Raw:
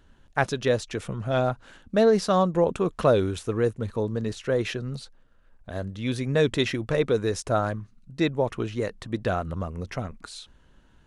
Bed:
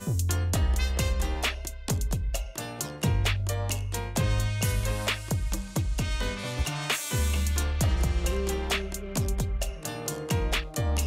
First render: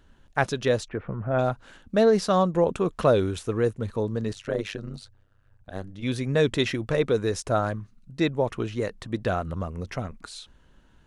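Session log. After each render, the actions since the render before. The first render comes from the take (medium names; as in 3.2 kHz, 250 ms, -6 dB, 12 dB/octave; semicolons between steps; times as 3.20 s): 0.88–1.39 s: low-pass 1.9 kHz 24 dB/octave; 4.33–6.03 s: AM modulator 100 Hz, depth 85%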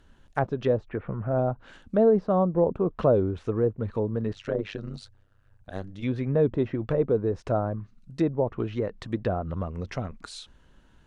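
low-pass that closes with the level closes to 960 Hz, closed at -21.5 dBFS; dynamic bell 1.8 kHz, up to -4 dB, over -40 dBFS, Q 0.93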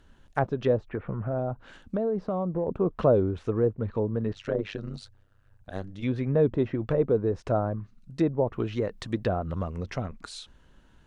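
0.89–2.68 s: compression, threshold -24 dBFS; 3.74–4.36 s: distance through air 100 m; 8.53–9.78 s: treble shelf 3.9 kHz +9 dB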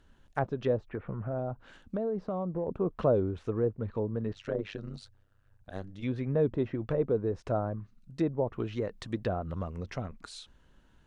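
trim -4.5 dB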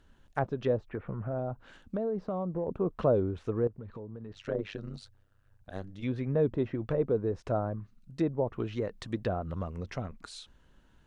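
3.67–4.34 s: compression, threshold -39 dBFS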